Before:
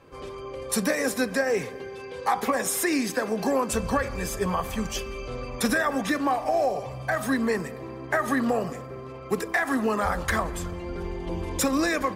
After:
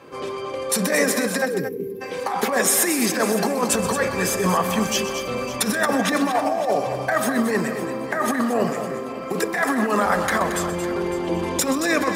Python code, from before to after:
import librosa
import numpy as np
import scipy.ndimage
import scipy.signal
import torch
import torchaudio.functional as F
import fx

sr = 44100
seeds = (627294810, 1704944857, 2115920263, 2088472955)

y = fx.over_compress(x, sr, threshold_db=-26.0, ratio=-0.5)
y = scipy.signal.sosfilt(scipy.signal.butter(2, 170.0, 'highpass', fs=sr, output='sos'), y)
y = fx.echo_feedback(y, sr, ms=556, feedback_pct=30, wet_db=-15)
y = fx.spec_box(y, sr, start_s=1.46, length_s=0.55, low_hz=510.0, high_hz=11000.0, gain_db=-26)
y = fx.echo_multitap(y, sr, ms=(126, 225), db=(-13.0, -9.5))
y = y * librosa.db_to_amplitude(7.0)